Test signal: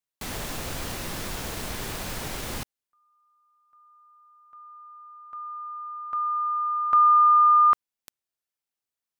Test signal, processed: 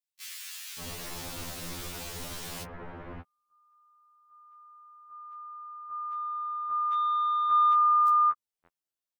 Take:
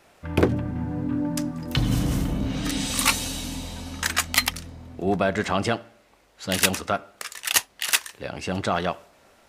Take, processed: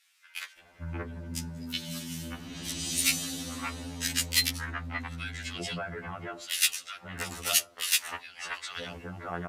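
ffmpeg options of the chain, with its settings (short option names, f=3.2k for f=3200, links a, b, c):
-filter_complex "[0:a]aeval=exprs='0.631*(cos(1*acos(clip(val(0)/0.631,-1,1)))-cos(1*PI/2))+0.0141*(cos(7*acos(clip(val(0)/0.631,-1,1)))-cos(7*PI/2))':c=same,acrossover=split=1800[a][b];[a]adelay=580[c];[c][b]amix=inputs=2:normalize=0,acrossover=split=1500[d][e];[d]acompressor=threshold=-36dB:ratio=4:attack=3.3:release=76:knee=6:detection=peak[f];[f][e]amix=inputs=2:normalize=0,afftfilt=real='re*2*eq(mod(b,4),0)':imag='im*2*eq(mod(b,4),0)':win_size=2048:overlap=0.75"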